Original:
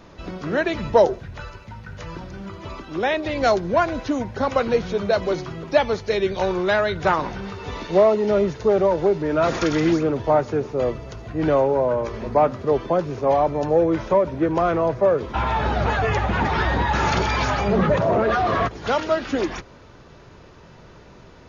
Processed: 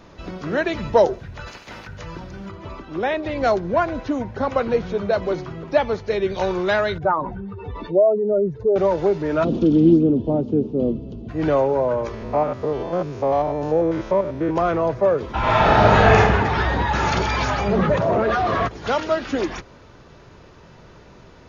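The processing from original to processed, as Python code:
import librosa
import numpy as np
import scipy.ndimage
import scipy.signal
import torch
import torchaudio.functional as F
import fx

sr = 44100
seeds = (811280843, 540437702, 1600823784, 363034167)

y = fx.spec_clip(x, sr, under_db=24, at=(1.46, 1.86), fade=0.02)
y = fx.high_shelf(y, sr, hz=3300.0, db=-9.0, at=(2.51, 6.3))
y = fx.spec_expand(y, sr, power=2.0, at=(6.98, 8.76))
y = fx.curve_eq(y, sr, hz=(120.0, 230.0, 670.0, 2000.0, 3000.0, 8200.0), db=(0, 13, -8, -29, -8, -26), at=(9.43, 11.28), fade=0.02)
y = fx.spec_steps(y, sr, hold_ms=100, at=(12.14, 14.56))
y = fx.reverb_throw(y, sr, start_s=15.39, length_s=0.77, rt60_s=1.3, drr_db=-8.5)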